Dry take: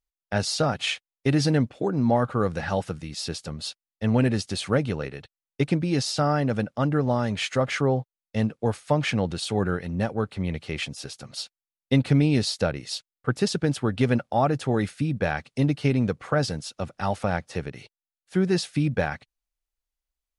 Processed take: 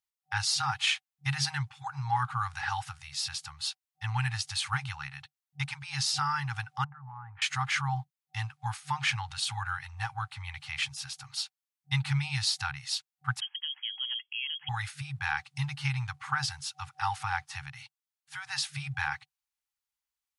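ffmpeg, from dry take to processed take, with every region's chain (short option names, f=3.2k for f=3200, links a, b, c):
-filter_complex "[0:a]asettb=1/sr,asplit=3[a][b][c];[a]atrim=end=6.844[d];[b]atrim=start=6.84:end=7.42,asetpts=PTS-STARTPTS,afade=t=in:d=0.004:c=qsin,afade=t=out:st=0.576:d=0.004:c=qsin,lowpass=f=1.4k:w=0.5412,lowpass=f=1.4k:w=1.3066,acompressor=threshold=-32dB:ratio=10:attack=3.2:release=140:knee=1:detection=peak[e];[c]atrim=start=7.416[f];[d][e]acrossfade=d=0.004:c1=hsin:c2=qsin[g];[g][f]acrossfade=d=0.004:c1=qsin:c2=hsin,asettb=1/sr,asplit=3[h][i][j];[h]atrim=end=13.404[k];[i]atrim=start=13.4:end=14.69,asetpts=PTS-STARTPTS,afade=t=in:d=0.004:c=qsin,afade=t=out:st=1.286:d=0.004:c=qsin,acompressor=threshold=-26dB:ratio=2.5:attack=3.2:release=140:knee=1:detection=peak,lowpass=f=2.9k:t=q:w=0.5098,lowpass=f=2.9k:t=q:w=0.6013,lowpass=f=2.9k:t=q:w=0.9,lowpass=f=2.9k:t=q:w=2.563,afreqshift=-3400,aderivative[l];[j]atrim=start=14.686[m];[k][l]acrossfade=d=0.004:c1=hsin:c2=qsin[n];[n][m]acrossfade=d=0.004:c1=qsin:c2=hsin,highpass=100,afftfilt=real='re*(1-between(b*sr/4096,150,760))':imag='im*(1-between(b*sr/4096,150,760))':win_size=4096:overlap=0.75,lowshelf=f=220:g=-6"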